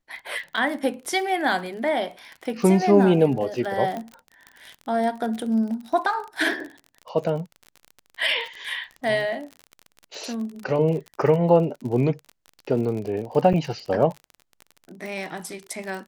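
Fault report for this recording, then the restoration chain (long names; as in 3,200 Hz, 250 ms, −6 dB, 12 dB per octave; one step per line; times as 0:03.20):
surface crackle 39 per second −31 dBFS
0:03.97: click −19 dBFS
0:13.53–0:13.54: drop-out 7.4 ms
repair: click removal
repair the gap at 0:13.53, 7.4 ms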